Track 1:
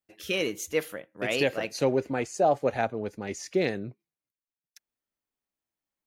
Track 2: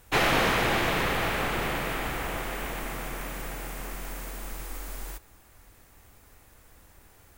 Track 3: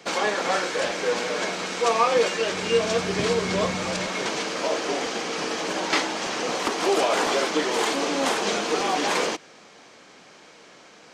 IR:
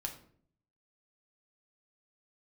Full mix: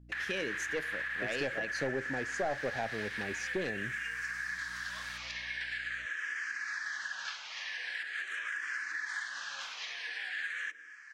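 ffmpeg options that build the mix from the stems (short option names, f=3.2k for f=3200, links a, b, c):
-filter_complex "[0:a]aeval=exprs='val(0)+0.002*(sin(2*PI*60*n/s)+sin(2*PI*2*60*n/s)/2+sin(2*PI*3*60*n/s)/3+sin(2*PI*4*60*n/s)/4+sin(2*PI*5*60*n/s)/5)':c=same,aeval=exprs='clip(val(0),-1,0.0891)':c=same,volume=-1.5dB,asplit=2[a][b];[b]volume=-14dB[c];[1:a]agate=range=-41dB:threshold=-48dB:ratio=16:detection=peak,alimiter=limit=-21dB:level=0:latency=1:release=218,volume=-6dB[d];[2:a]alimiter=limit=-15.5dB:level=0:latency=1:release=293,asplit=2[e][f];[f]afreqshift=-0.44[g];[e][g]amix=inputs=2:normalize=1,adelay=1350,volume=-10dB,asplit=2[h][i];[i]volume=-22dB[j];[d][h]amix=inputs=2:normalize=0,highpass=f=1.7k:t=q:w=13,alimiter=limit=-23dB:level=0:latency=1:release=154,volume=0dB[k];[3:a]atrim=start_sample=2205[l];[c][j]amix=inputs=2:normalize=0[m];[m][l]afir=irnorm=-1:irlink=0[n];[a][k][n]amix=inputs=3:normalize=0,lowpass=7.9k,acompressor=threshold=-38dB:ratio=2"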